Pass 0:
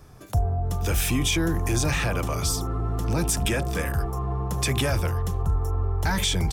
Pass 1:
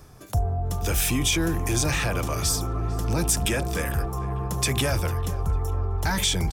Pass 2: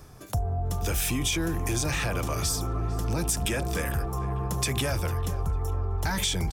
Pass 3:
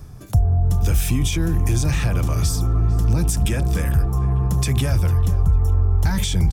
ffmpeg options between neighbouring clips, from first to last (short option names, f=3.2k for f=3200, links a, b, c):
-filter_complex "[0:a]bass=f=250:g=-1,treble=f=4k:g=3,areverse,acompressor=mode=upward:threshold=-36dB:ratio=2.5,areverse,asplit=2[a][b];[b]adelay=449,lowpass=f=2.4k:p=1,volume=-16.5dB,asplit=2[c][d];[d]adelay=449,lowpass=f=2.4k:p=1,volume=0.53,asplit=2[e][f];[f]adelay=449,lowpass=f=2.4k:p=1,volume=0.53,asplit=2[g][h];[h]adelay=449,lowpass=f=2.4k:p=1,volume=0.53,asplit=2[i][j];[j]adelay=449,lowpass=f=2.4k:p=1,volume=0.53[k];[a][c][e][g][i][k]amix=inputs=6:normalize=0"
-af "acompressor=threshold=-25dB:ratio=2.5"
-af "bass=f=250:g=12,treble=f=4k:g=1"